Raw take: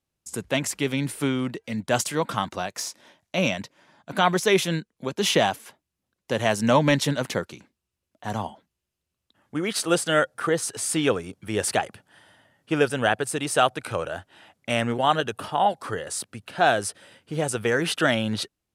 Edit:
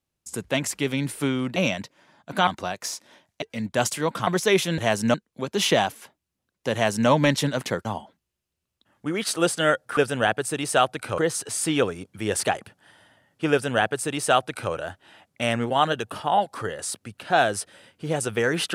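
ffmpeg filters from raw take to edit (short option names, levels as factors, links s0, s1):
-filter_complex "[0:a]asplit=10[s0][s1][s2][s3][s4][s5][s6][s7][s8][s9];[s0]atrim=end=1.562[s10];[s1]atrim=start=3.358:end=4.272[s11];[s2]atrim=start=2.408:end=3.362[s12];[s3]atrim=start=1.558:end=2.412[s13];[s4]atrim=start=4.268:end=4.782[s14];[s5]atrim=start=6.368:end=6.732[s15];[s6]atrim=start=4.778:end=7.492[s16];[s7]atrim=start=8.338:end=10.462[s17];[s8]atrim=start=12.788:end=14.002[s18];[s9]atrim=start=10.458[s19];[s10][s11]acrossfade=d=0.004:c1=hsin:c2=hsin[s20];[s20][s12]acrossfade=d=0.004:c1=hsin:c2=hsin[s21];[s21][s13]acrossfade=d=0.004:c1=hsin:c2=hsin[s22];[s22][s14]acrossfade=d=0.004:c1=hsin:c2=hsin[s23];[s23][s15]acrossfade=d=0.004:c1=hsin:c2=hsin[s24];[s24][s16]acrossfade=d=0.004:c1=hsin:c2=hsin[s25];[s25][s17]acrossfade=d=0.004:c1=hsin:c2=hsin[s26];[s26][s18]acrossfade=d=0.004:c1=hsin:c2=hsin[s27];[s27][s19]acrossfade=d=0.004:c1=hsin:c2=hsin"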